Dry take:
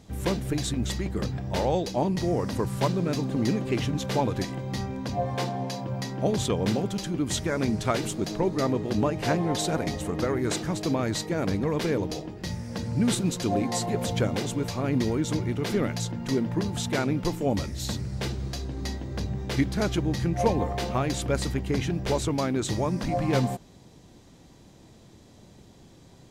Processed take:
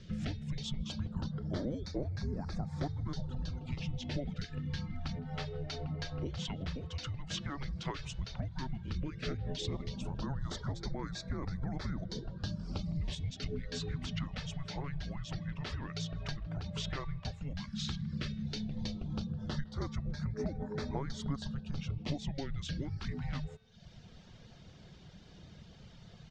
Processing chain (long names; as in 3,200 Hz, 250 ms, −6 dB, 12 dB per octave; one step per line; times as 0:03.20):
low-pass filter 5,500 Hz 24 dB per octave
reverb reduction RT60 0.63 s
high-pass filter 66 Hz
hum removal 360.6 Hz, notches 12
downward compressor 6 to 1, threshold −36 dBFS, peak gain reduction 17.5 dB
auto-filter notch sine 0.11 Hz 350–3,300 Hz
frequency shifter −280 Hz
far-end echo of a speakerphone 160 ms, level −24 dB
level +2 dB